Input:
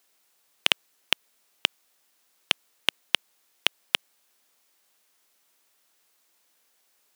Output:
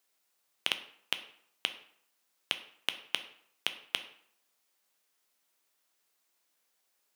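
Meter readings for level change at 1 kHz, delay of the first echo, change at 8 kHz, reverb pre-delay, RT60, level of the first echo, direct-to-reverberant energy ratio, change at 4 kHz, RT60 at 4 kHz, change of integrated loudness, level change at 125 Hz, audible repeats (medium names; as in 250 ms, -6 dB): -8.5 dB, no echo, -8.5 dB, 8 ms, 0.65 s, no echo, 8.5 dB, -8.5 dB, 0.45 s, -8.5 dB, no reading, no echo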